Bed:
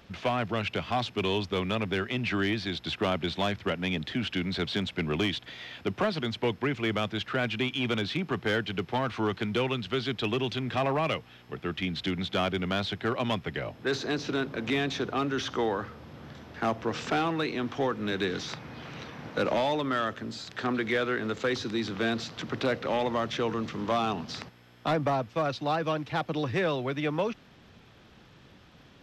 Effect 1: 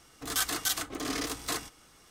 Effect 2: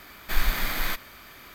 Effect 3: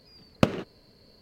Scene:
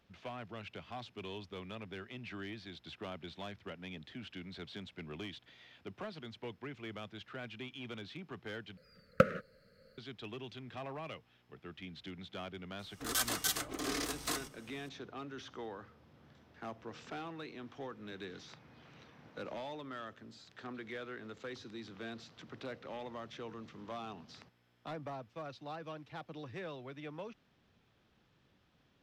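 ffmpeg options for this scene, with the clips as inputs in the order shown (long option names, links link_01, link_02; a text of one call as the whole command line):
ffmpeg -i bed.wav -i cue0.wav -i cue1.wav -i cue2.wav -filter_complex "[0:a]volume=-16.5dB[link_01];[3:a]firequalizer=gain_entry='entry(120,0);entry(170,5);entry(350,-11);entry(520,14);entry(860,-26);entry(1300,15);entry(3000,-4);entry(10000,0)':delay=0.05:min_phase=1[link_02];[link_01]asplit=2[link_03][link_04];[link_03]atrim=end=8.774[link_05];[link_02]atrim=end=1.21,asetpts=PTS-STARTPTS,volume=-10dB[link_06];[link_04]atrim=start=9.976[link_07];[1:a]atrim=end=2.1,asetpts=PTS-STARTPTS,volume=-4dB,afade=type=in:duration=0.004:curve=hsin,afade=type=out:start_time=2.096:duration=0.004:curve=hsin,adelay=12790[link_08];[link_05][link_06]acrossfade=duration=0.004:curve1=hsin:curve2=hsin[link_09];[link_09][link_07]acrossfade=duration=0.004:curve1=hsin:curve2=hsin[link_10];[link_10][link_08]amix=inputs=2:normalize=0" out.wav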